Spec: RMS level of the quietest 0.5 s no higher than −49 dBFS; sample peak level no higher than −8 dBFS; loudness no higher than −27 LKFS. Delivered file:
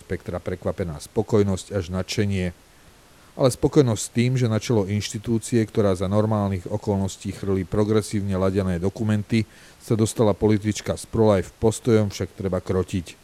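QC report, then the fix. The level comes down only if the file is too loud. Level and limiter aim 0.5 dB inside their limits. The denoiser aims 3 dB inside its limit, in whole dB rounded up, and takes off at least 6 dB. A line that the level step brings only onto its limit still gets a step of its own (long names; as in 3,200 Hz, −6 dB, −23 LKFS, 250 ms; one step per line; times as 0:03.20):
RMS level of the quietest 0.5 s −51 dBFS: in spec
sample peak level −3.5 dBFS: out of spec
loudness −23.0 LKFS: out of spec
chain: level −4.5 dB
brickwall limiter −8.5 dBFS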